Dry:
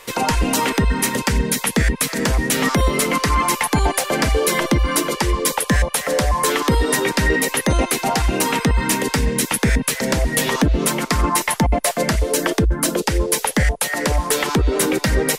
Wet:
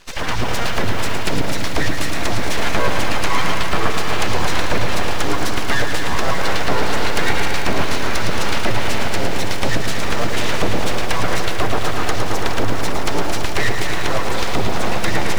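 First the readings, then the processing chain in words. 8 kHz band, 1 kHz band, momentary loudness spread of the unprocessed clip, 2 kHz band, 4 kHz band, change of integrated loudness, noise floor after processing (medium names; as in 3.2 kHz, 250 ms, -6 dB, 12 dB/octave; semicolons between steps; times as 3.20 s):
-8.0 dB, -0.5 dB, 2 LU, 0.0 dB, +0.5 dB, -3.0 dB, -15 dBFS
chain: coarse spectral quantiser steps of 30 dB; in parallel at -5.5 dB: bit crusher 6-bit; on the sum: low-pass 5.8 kHz 24 dB/octave; on a send: echo whose repeats swap between lows and highs 701 ms, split 1 kHz, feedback 73%, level -9 dB; on the sum: full-wave rectifier; bit-crushed delay 111 ms, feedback 80%, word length 6-bit, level -7 dB; trim -3.5 dB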